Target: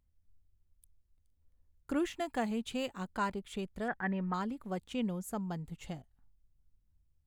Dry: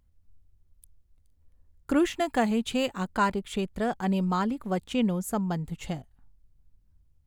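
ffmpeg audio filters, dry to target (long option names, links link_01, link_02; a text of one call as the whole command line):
ffmpeg -i in.wav -filter_complex "[0:a]asettb=1/sr,asplit=3[link_01][link_02][link_03];[link_01]atrim=end=3.884[link_04];[link_02]atrim=start=3.88:end=4.34,asetpts=PTS-STARTPTS,afade=type=in:duration=0.004:curve=qsin,afade=type=out:start_time=0.456:duration=0.004:curve=qsin,lowpass=frequency=1800:width_type=q:width=6.5[link_05];[link_03]atrim=start=4.336[link_06];[link_04][link_05]acrossfade=duration=0.004:curve1=hsin:curve2=qsin[link_07];[link_07][link_06]acrossfade=duration=0.004:curve1=qsin:curve2=hsin,volume=-9dB" out.wav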